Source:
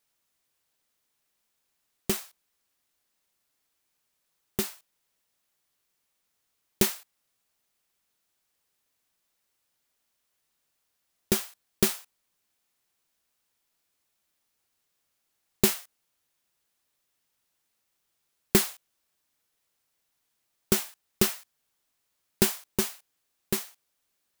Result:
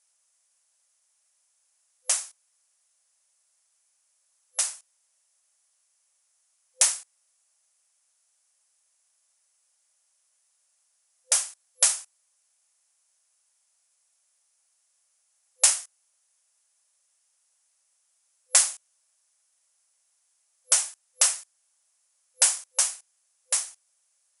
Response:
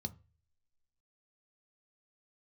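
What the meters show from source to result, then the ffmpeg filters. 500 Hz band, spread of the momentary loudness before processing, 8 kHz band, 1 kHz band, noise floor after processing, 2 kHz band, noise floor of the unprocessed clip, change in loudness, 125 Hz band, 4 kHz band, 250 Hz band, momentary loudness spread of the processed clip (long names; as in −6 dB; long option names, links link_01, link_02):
−13.5 dB, 14 LU, +11.0 dB, +1.0 dB, −71 dBFS, +1.0 dB, −78 dBFS, +4.0 dB, below −40 dB, +3.5 dB, below −40 dB, 15 LU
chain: -af "aexciter=amount=3.3:drive=6.4:freq=5500,afftfilt=real='re*between(b*sr/4096,510,11000)':imag='im*between(b*sr/4096,510,11000)':win_size=4096:overlap=0.75,volume=1dB"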